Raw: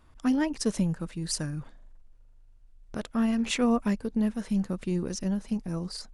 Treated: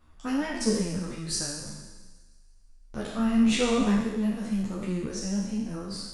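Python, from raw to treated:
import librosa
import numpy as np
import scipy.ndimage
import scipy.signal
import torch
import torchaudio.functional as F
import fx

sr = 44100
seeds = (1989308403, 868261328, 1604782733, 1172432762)

y = fx.spec_trails(x, sr, decay_s=1.29)
y = fx.low_shelf(y, sr, hz=490.0, db=6.0, at=(3.18, 4.0))
y = fx.echo_wet_highpass(y, sr, ms=166, feedback_pct=62, hz=1800.0, wet_db=-20.5)
y = fx.ensemble(y, sr)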